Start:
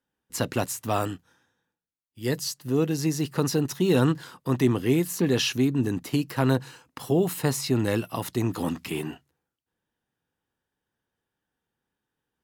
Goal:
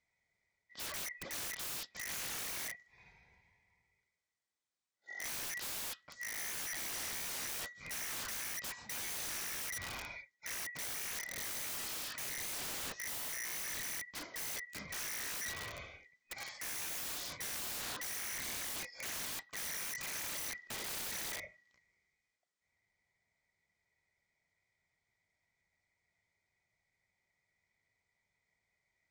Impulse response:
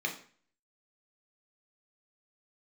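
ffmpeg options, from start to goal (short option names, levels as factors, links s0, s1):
-af "afftfilt=real='real(if(lt(b,272),68*(eq(floor(b/68),0)*1+eq(floor(b/68),1)*2+eq(floor(b/68),2)*3+eq(floor(b/68),3)*0)+mod(b,68),b),0)':imag='imag(if(lt(b,272),68*(eq(floor(b/68),0)*1+eq(floor(b/68),1)*2+eq(floor(b/68),2)*3+eq(floor(b/68),3)*0)+mod(b,68),b),0)':win_size=2048:overlap=0.75,highpass=f=120:p=1,bandreject=f=6500:w=9.8,areverse,acompressor=threshold=0.0355:ratio=16,areverse,aeval=exprs='(mod(37.6*val(0)+1,2)-1)/37.6':c=same,asetrate=18846,aresample=44100,aeval=exprs='(mod(75*val(0)+1,2)-1)/75':c=same,volume=1.12"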